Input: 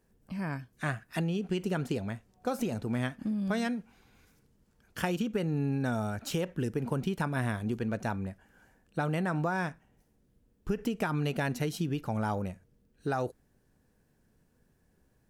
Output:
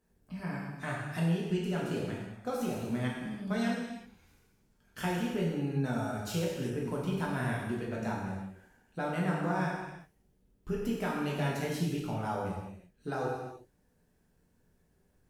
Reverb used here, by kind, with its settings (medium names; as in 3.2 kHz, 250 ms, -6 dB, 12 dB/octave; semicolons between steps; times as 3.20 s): gated-style reverb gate 400 ms falling, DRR -5 dB; trim -7 dB